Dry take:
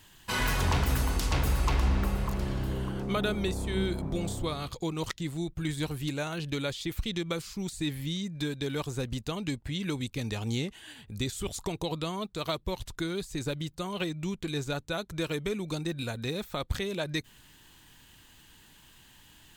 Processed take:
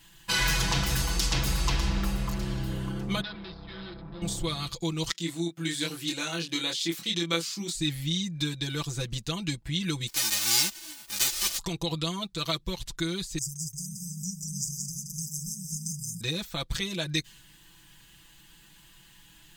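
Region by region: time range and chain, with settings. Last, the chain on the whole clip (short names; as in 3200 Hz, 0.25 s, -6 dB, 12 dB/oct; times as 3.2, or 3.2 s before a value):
3.21–4.22 overloaded stage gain 34.5 dB + rippled Chebyshev low-pass 5200 Hz, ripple 6 dB
5.12–7.75 HPF 200 Hz 24 dB/oct + doubler 24 ms -3 dB
10.07–11.57 spectral whitening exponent 0.1 + comb 3.3 ms, depth 61%
13.38–16.21 brick-wall FIR band-stop 210–4800 Hz + tilt +2.5 dB/oct + split-band echo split 300 Hz, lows 0.268 s, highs 0.175 s, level -3.5 dB
whole clip: bell 580 Hz -5 dB 1.9 oct; comb 6 ms, depth 91%; dynamic EQ 5200 Hz, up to +8 dB, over -50 dBFS, Q 0.81; gain -1 dB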